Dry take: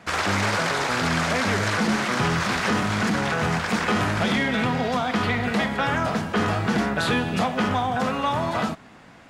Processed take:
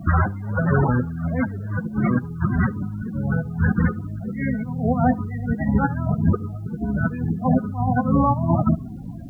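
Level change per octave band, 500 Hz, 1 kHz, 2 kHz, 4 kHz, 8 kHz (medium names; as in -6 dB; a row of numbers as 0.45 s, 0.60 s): -2.5 dB, -3.0 dB, -7.5 dB, under -40 dB, under -30 dB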